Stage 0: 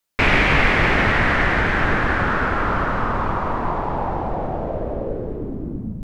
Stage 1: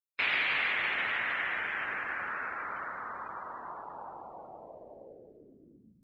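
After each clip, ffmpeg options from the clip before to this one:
ffmpeg -i in.wav -af "afftdn=noise_reduction=26:noise_floor=-31,aderivative" out.wav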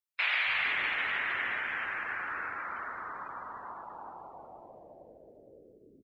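ffmpeg -i in.wav -filter_complex "[0:a]acrossover=split=180|540[link_01][link_02][link_03];[link_01]adelay=270[link_04];[link_02]adelay=460[link_05];[link_04][link_05][link_03]amix=inputs=3:normalize=0" out.wav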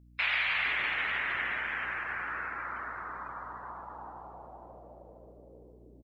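ffmpeg -i in.wav -filter_complex "[0:a]asplit=2[link_01][link_02];[link_02]adelay=532,lowpass=frequency=1300:poles=1,volume=-12.5dB,asplit=2[link_03][link_04];[link_04]adelay=532,lowpass=frequency=1300:poles=1,volume=0.32,asplit=2[link_05][link_06];[link_06]adelay=532,lowpass=frequency=1300:poles=1,volume=0.32[link_07];[link_01][link_03][link_05][link_07]amix=inputs=4:normalize=0,aeval=exprs='val(0)+0.00158*(sin(2*PI*60*n/s)+sin(2*PI*2*60*n/s)/2+sin(2*PI*3*60*n/s)/3+sin(2*PI*4*60*n/s)/4+sin(2*PI*5*60*n/s)/5)':channel_layout=same" out.wav

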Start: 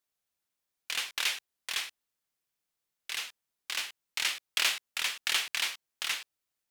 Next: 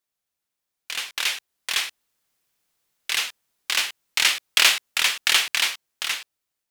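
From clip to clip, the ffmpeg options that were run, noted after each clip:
ffmpeg -i in.wav -af "dynaudnorm=framelen=470:gausssize=7:maxgain=11.5dB,volume=1.5dB" out.wav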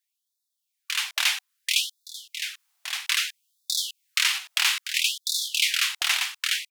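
ffmpeg -i in.wav -af "aecho=1:1:1168:0.335,alimiter=limit=-11dB:level=0:latency=1:release=299,afftfilt=real='re*gte(b*sr/1024,630*pow(3500/630,0.5+0.5*sin(2*PI*0.61*pts/sr)))':imag='im*gte(b*sr/1024,630*pow(3500/630,0.5+0.5*sin(2*PI*0.61*pts/sr)))':win_size=1024:overlap=0.75,volume=2.5dB" out.wav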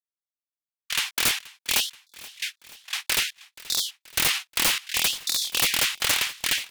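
ffmpeg -i in.wav -af "agate=range=-24dB:threshold=-31dB:ratio=16:detection=peak,aeval=exprs='(mod(5.62*val(0)+1,2)-1)/5.62':channel_layout=same,aecho=1:1:479|958|1437|1916|2395:0.0944|0.0548|0.0318|0.0184|0.0107,volume=1.5dB" out.wav

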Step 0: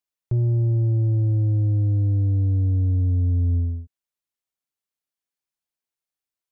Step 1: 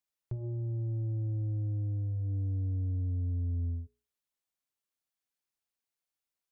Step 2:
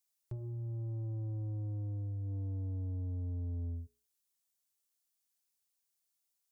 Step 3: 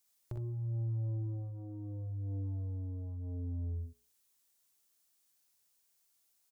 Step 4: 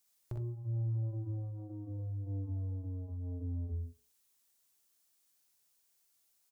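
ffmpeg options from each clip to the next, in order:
ffmpeg -i in.wav -af "bandreject=frequency=60:width_type=h:width=6,bandreject=frequency=120:width_type=h:width=6,bandreject=frequency=180:width_type=h:width=6,bandreject=frequency=240:width_type=h:width=6,bandreject=frequency=300:width_type=h:width=6,bandreject=frequency=360:width_type=h:width=6,bandreject=frequency=420:width_type=h:width=6,alimiter=level_in=4dB:limit=-24dB:level=0:latency=1:release=394,volume=-4dB,volume=-1.5dB" out.wav
ffmpeg -i in.wav -af "bass=frequency=250:gain=0,treble=frequency=4000:gain=12,asoftclip=type=tanh:threshold=-31dB,volume=-3dB" out.wav
ffmpeg -i in.wav -af "acompressor=threshold=-48dB:ratio=3,aecho=1:1:45|61:0.422|0.596,volume=6.5dB" out.wav
ffmpeg -i in.wav -af "flanger=delay=4.1:depth=3.5:regen=-78:speed=1.7:shape=sinusoidal,volume=5dB" out.wav

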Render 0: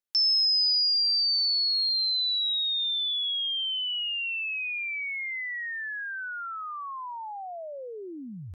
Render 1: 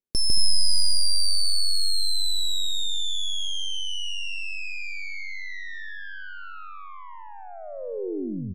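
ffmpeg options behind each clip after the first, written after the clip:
ffmpeg -i in.wav -af "aeval=exprs='0.112*(cos(1*acos(clip(val(0)/0.112,-1,1)))-cos(1*PI/2))+0.0562*(cos(2*acos(clip(val(0)/0.112,-1,1)))-cos(2*PI/2))+0.00447*(cos(7*acos(clip(val(0)/0.112,-1,1)))-cos(7*PI/2))':channel_layout=same,lowshelf=frequency=600:width_type=q:width=1.5:gain=11.5,aecho=1:1:151.6|227.4:0.794|0.282,volume=-4dB" out.wav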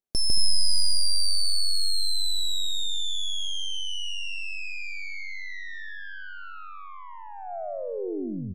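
ffmpeg -i in.wav -af "equalizer=frequency=690:width=3.7:gain=9.5,volume=-1.5dB" out.wav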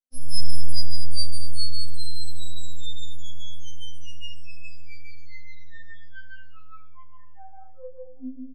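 ffmpeg -i in.wav -af "flanger=delay=20:depth=3.9:speed=0.32,aecho=1:1:20|43|69.45|99.87|134.8:0.631|0.398|0.251|0.158|0.1,afftfilt=real='re*3.46*eq(mod(b,12),0)':imag='im*3.46*eq(mod(b,12),0)':win_size=2048:overlap=0.75,volume=-7dB" out.wav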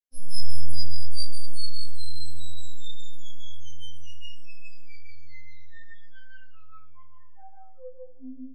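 ffmpeg -i in.wav -af "flanger=delay=17:depth=5.9:speed=0.65,volume=-1.5dB" out.wav

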